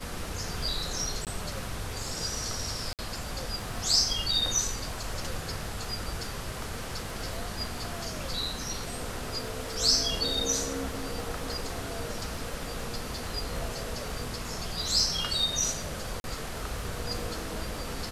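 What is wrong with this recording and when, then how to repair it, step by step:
crackle 29/s -38 dBFS
1.25–1.27 gap 18 ms
2.93–2.99 gap 58 ms
16.2–16.24 gap 41 ms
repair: de-click; interpolate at 1.25, 18 ms; interpolate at 2.93, 58 ms; interpolate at 16.2, 41 ms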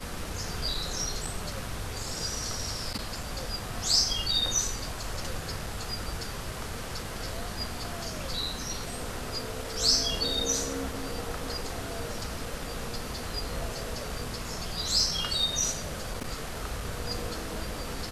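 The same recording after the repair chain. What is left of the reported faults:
none

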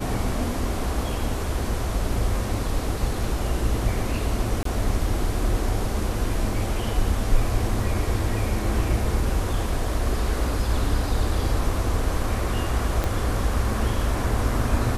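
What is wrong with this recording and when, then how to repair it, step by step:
4.63–4.65 gap 23 ms
13.04 pop -11 dBFS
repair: de-click; interpolate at 4.63, 23 ms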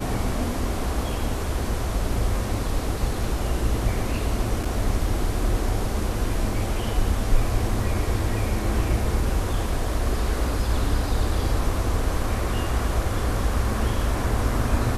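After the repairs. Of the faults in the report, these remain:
13.04 pop

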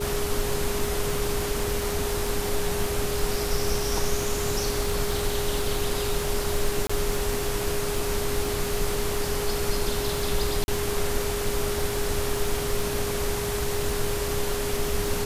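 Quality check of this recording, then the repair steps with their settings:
crackle 53/s -29 dBFS
tone 410 Hz -29 dBFS
6.87–6.89 gap 25 ms
10.64–10.68 gap 41 ms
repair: de-click; notch 410 Hz, Q 30; interpolate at 6.87, 25 ms; interpolate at 10.64, 41 ms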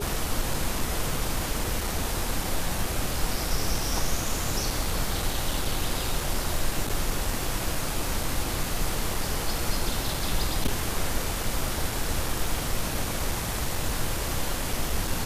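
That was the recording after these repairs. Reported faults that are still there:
none

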